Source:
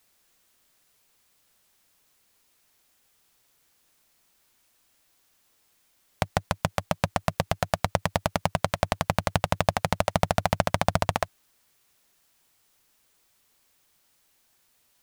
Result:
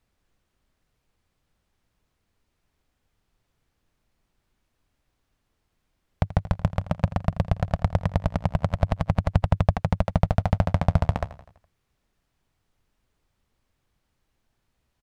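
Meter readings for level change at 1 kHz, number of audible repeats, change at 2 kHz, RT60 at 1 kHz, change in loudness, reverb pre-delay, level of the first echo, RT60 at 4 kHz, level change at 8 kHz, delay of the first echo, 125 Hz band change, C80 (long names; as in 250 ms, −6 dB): −4.5 dB, 4, −7.0 dB, no reverb audible, +2.0 dB, no reverb audible, −16.0 dB, no reverb audible, below −15 dB, 83 ms, +7.5 dB, no reverb audible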